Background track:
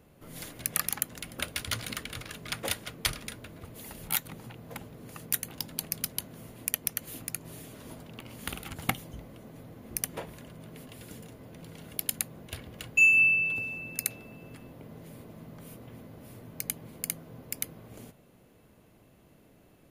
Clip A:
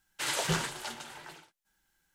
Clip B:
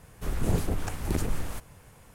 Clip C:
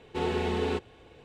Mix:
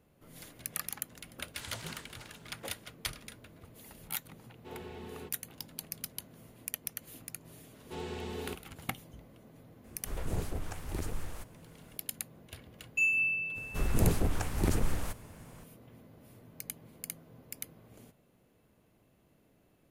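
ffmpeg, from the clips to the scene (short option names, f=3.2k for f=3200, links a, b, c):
-filter_complex "[3:a]asplit=2[a][b];[2:a]asplit=2[c][d];[0:a]volume=-8dB[e];[b]bass=f=250:g=2,treble=f=4k:g=9[f];[c]equalizer=f=200:w=1.5:g=-4.5[g];[1:a]atrim=end=2.14,asetpts=PTS-STARTPTS,volume=-16dB,afade=t=in:d=0.004:c=hsin,afade=t=out:st=2.136:d=0.004:c=hsin,adelay=1350[h];[a]atrim=end=1.24,asetpts=PTS-STARTPTS,volume=-17dB,afade=t=in:d=0.004:c=hsin,afade=t=out:st=1.236:d=0.004:c=hsin,adelay=4500[i];[f]atrim=end=1.24,asetpts=PTS-STARTPTS,volume=-12dB,afade=t=in:d=0.004:c=hsin,afade=t=out:st=1.236:d=0.004:c=hsin,adelay=7760[j];[g]atrim=end=2.14,asetpts=PTS-STARTPTS,volume=-7.5dB,afade=t=in:d=0.004:c=hsin,afade=t=out:st=2.136:d=0.004:c=hsin,adelay=9840[k];[d]atrim=end=2.14,asetpts=PTS-STARTPTS,volume=-0.5dB,afade=t=in:d=0.05,afade=t=out:st=2.09:d=0.05,adelay=13530[l];[e][h][i][j][k][l]amix=inputs=6:normalize=0"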